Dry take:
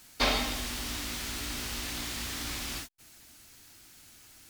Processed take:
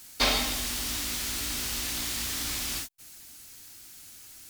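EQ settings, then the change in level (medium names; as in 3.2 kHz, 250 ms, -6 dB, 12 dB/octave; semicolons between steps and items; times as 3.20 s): treble shelf 4.3 kHz +8.5 dB; 0.0 dB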